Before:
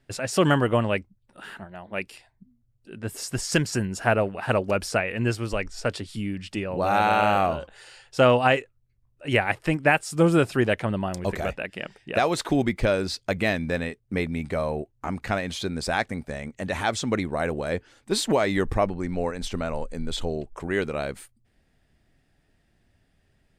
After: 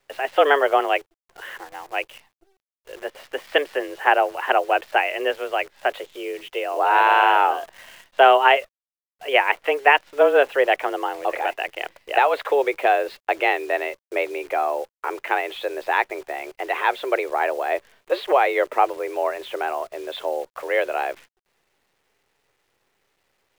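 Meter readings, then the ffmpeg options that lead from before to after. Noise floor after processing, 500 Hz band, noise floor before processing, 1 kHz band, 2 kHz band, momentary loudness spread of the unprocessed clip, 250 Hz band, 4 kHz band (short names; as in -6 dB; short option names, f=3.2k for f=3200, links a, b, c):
under -85 dBFS, +4.0 dB, -68 dBFS, +8.0 dB, +5.5 dB, 13 LU, -9.0 dB, +3.0 dB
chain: -af "highpass=f=260:t=q:w=0.5412,highpass=f=260:t=q:w=1.307,lowpass=f=3.1k:t=q:w=0.5176,lowpass=f=3.1k:t=q:w=0.7071,lowpass=f=3.1k:t=q:w=1.932,afreqshift=140,acrusher=bits=9:dc=4:mix=0:aa=0.000001,volume=5dB"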